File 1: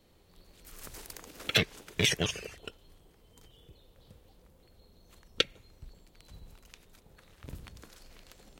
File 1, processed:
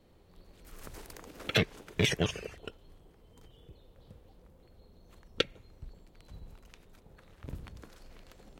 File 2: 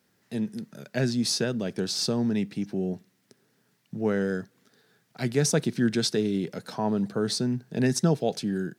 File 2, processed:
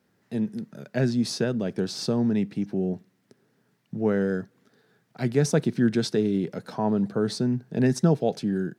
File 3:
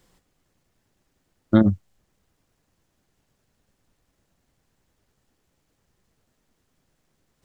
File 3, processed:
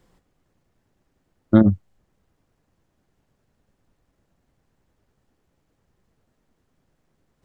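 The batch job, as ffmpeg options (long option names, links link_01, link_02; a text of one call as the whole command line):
ffmpeg -i in.wav -af "highshelf=frequency=2300:gain=-9.5,volume=2.5dB" out.wav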